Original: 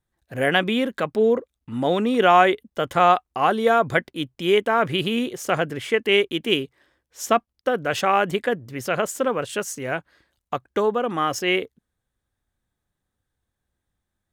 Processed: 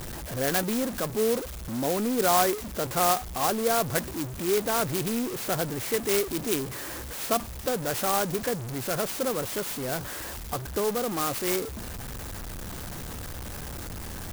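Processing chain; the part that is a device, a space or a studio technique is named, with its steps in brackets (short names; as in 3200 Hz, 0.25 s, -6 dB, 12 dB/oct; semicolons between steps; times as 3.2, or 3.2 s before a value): early CD player with a faulty converter (zero-crossing step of -21.5 dBFS; clock jitter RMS 0.1 ms); gain -8.5 dB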